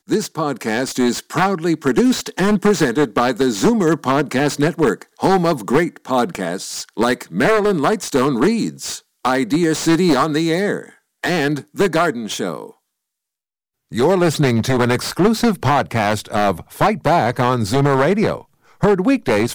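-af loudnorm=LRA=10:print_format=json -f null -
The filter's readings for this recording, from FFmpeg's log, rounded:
"input_i" : "-17.5",
"input_tp" : "-2.0",
"input_lra" : "2.7",
"input_thresh" : "-27.7",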